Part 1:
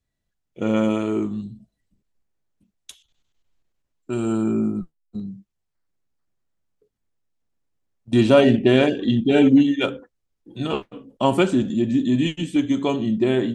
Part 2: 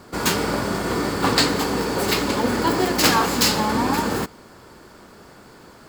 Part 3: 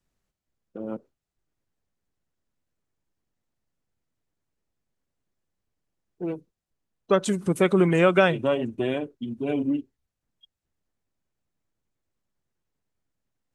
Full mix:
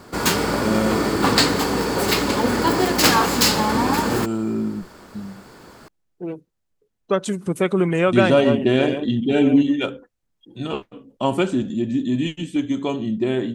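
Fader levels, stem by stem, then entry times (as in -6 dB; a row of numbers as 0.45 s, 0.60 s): -2.0 dB, +1.5 dB, +0.5 dB; 0.00 s, 0.00 s, 0.00 s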